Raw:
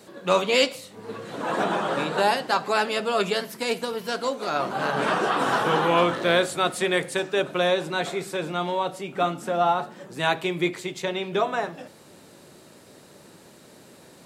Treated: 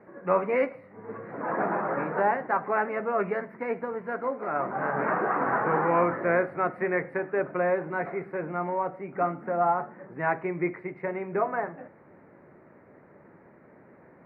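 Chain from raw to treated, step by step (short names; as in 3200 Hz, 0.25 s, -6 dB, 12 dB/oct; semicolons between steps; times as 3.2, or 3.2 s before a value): elliptic low-pass 2100 Hz, stop band 40 dB; gain -2.5 dB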